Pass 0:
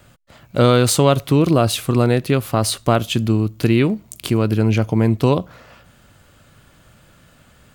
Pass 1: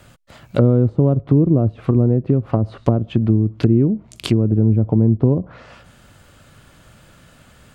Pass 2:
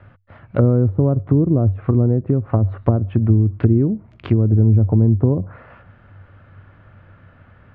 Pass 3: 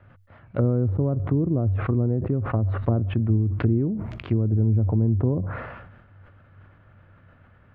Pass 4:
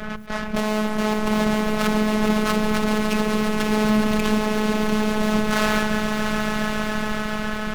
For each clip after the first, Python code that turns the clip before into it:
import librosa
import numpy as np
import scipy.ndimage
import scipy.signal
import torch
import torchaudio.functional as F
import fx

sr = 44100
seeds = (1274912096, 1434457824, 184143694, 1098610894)

y1 = fx.env_lowpass_down(x, sr, base_hz=340.0, full_db=-13.0)
y1 = y1 * librosa.db_to_amplitude(2.5)
y2 = fx.ladder_lowpass(y1, sr, hz=2300.0, resonance_pct=25)
y2 = fx.peak_eq(y2, sr, hz=96.0, db=15.0, octaves=0.23)
y2 = y2 * librosa.db_to_amplitude(4.0)
y3 = fx.sustainer(y2, sr, db_per_s=43.0)
y3 = y3 * librosa.db_to_amplitude(-7.5)
y4 = fx.fuzz(y3, sr, gain_db=49.0, gate_db=-58.0)
y4 = fx.echo_swell(y4, sr, ms=139, loudest=5, wet_db=-10.0)
y4 = fx.robotise(y4, sr, hz=214.0)
y4 = y4 * librosa.db_to_amplitude(-4.5)